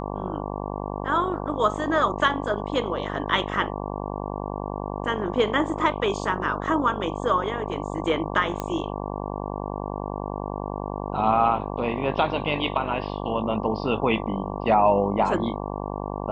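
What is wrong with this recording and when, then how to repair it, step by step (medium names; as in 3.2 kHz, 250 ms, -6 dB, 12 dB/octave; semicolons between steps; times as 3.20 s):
buzz 50 Hz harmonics 23 -31 dBFS
8.60 s: pop -14 dBFS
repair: de-click; de-hum 50 Hz, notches 23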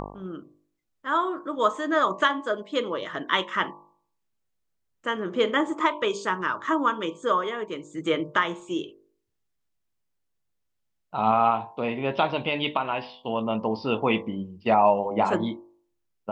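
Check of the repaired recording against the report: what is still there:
8.60 s: pop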